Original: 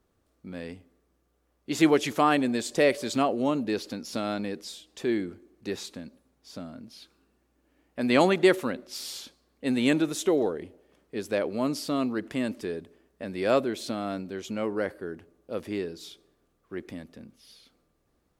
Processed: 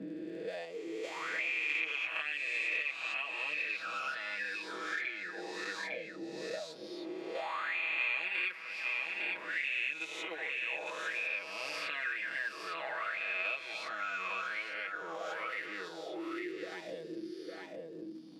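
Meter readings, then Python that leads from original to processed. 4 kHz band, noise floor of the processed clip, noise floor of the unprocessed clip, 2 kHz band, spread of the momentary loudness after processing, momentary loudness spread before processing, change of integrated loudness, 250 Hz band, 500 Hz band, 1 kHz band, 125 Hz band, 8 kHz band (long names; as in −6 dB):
−5.5 dB, −47 dBFS, −72 dBFS, +3.0 dB, 11 LU, 19 LU, −8.5 dB, −18.5 dB, −15.0 dB, −9.0 dB, below −20 dB, −13.5 dB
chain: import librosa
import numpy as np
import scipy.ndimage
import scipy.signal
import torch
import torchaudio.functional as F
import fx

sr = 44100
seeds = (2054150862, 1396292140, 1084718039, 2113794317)

p1 = fx.spec_swells(x, sr, rise_s=2.29)
p2 = fx.peak_eq(p1, sr, hz=270.0, db=-9.0, octaves=0.3)
p3 = p2 + 0.97 * np.pad(p2, (int(6.2 * sr / 1000.0), 0))[:len(p2)]
p4 = fx.level_steps(p3, sr, step_db=17)
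p5 = p3 + F.gain(torch.from_numpy(p4), -2.0).numpy()
p6 = fx.comb_fb(p5, sr, f0_hz=160.0, decay_s=1.8, harmonics='all', damping=0.0, mix_pct=40)
p7 = fx.dmg_crackle(p6, sr, seeds[0], per_s=83.0, level_db=-42.0)
p8 = fx.auto_wah(p7, sr, base_hz=240.0, top_hz=2500.0, q=10.0, full_db=-23.0, direction='up')
p9 = p8 + fx.echo_single(p8, sr, ms=855, db=-10.5, dry=0)
p10 = fx.band_squash(p9, sr, depth_pct=100)
y = F.gain(torch.from_numpy(p10), 3.5).numpy()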